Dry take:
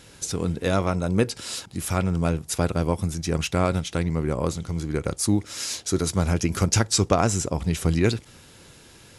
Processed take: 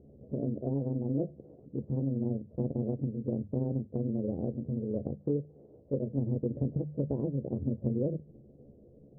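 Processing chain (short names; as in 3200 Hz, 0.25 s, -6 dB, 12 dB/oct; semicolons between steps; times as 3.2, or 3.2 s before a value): delay-line pitch shifter +6 st; Chebyshev low-pass 520 Hz, order 4; compressor 2:1, threshold -31 dBFS, peak gain reduction 8 dB; notches 50/100/150/200 Hz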